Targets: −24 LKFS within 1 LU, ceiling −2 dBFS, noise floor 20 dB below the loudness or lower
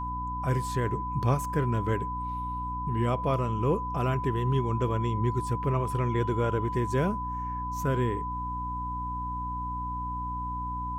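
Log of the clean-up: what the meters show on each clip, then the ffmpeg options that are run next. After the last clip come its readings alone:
mains hum 60 Hz; hum harmonics up to 300 Hz; level of the hum −34 dBFS; interfering tone 1,000 Hz; level of the tone −32 dBFS; integrated loudness −29.5 LKFS; sample peak −13.0 dBFS; target loudness −24.0 LKFS
→ -af "bandreject=frequency=60:width_type=h:width=6,bandreject=frequency=120:width_type=h:width=6,bandreject=frequency=180:width_type=h:width=6,bandreject=frequency=240:width_type=h:width=6,bandreject=frequency=300:width_type=h:width=6"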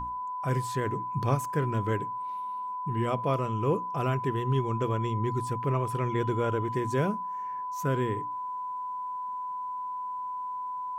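mains hum none found; interfering tone 1,000 Hz; level of the tone −32 dBFS
→ -af "bandreject=frequency=1000:width=30"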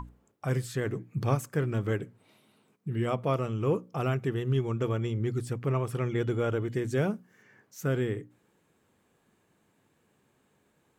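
interfering tone none found; integrated loudness −31.0 LKFS; sample peak −15.0 dBFS; target loudness −24.0 LKFS
→ -af "volume=7dB"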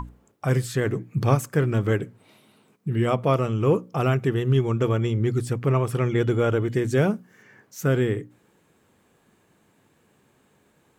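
integrated loudness −24.0 LKFS; sample peak −8.0 dBFS; background noise floor −64 dBFS

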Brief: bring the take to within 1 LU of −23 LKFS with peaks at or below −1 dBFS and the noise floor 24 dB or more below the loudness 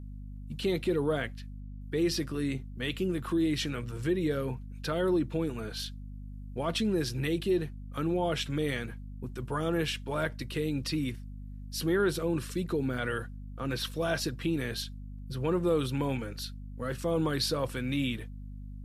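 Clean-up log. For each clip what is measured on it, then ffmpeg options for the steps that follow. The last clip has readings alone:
mains hum 50 Hz; hum harmonics up to 250 Hz; level of the hum −40 dBFS; integrated loudness −32.0 LKFS; sample peak −17.0 dBFS; target loudness −23.0 LKFS
→ -af "bandreject=frequency=50:width_type=h:width=6,bandreject=frequency=100:width_type=h:width=6,bandreject=frequency=150:width_type=h:width=6,bandreject=frequency=200:width_type=h:width=6,bandreject=frequency=250:width_type=h:width=6"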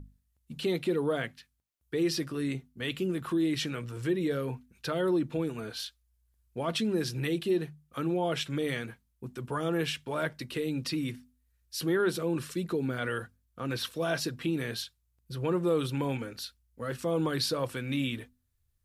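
mains hum none found; integrated loudness −32.0 LKFS; sample peak −17.0 dBFS; target loudness −23.0 LKFS
→ -af "volume=9dB"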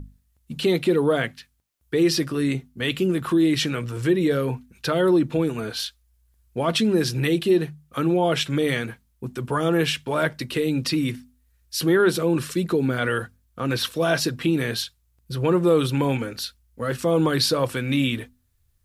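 integrated loudness −23.0 LKFS; sample peak −8.0 dBFS; background noise floor −66 dBFS

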